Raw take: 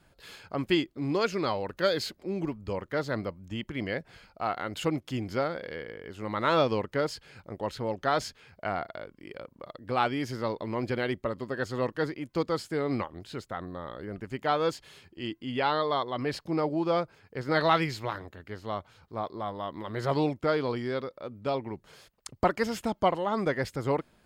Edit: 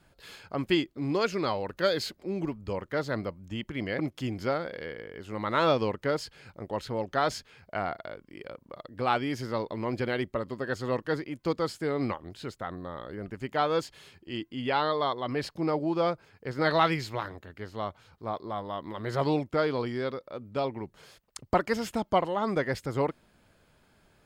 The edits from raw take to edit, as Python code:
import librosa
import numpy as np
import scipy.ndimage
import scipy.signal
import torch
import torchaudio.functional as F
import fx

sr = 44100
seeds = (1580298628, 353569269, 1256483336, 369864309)

y = fx.edit(x, sr, fx.cut(start_s=3.99, length_s=0.9), tone=tone)